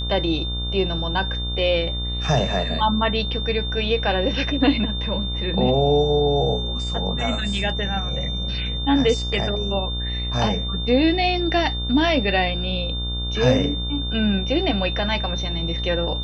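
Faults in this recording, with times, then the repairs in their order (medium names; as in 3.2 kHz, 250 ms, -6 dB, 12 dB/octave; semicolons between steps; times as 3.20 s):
buzz 60 Hz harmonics 25 -27 dBFS
whine 3.6 kHz -28 dBFS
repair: band-stop 3.6 kHz, Q 30; de-hum 60 Hz, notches 25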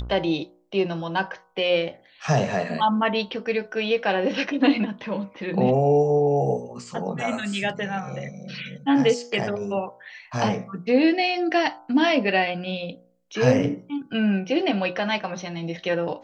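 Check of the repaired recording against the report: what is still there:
nothing left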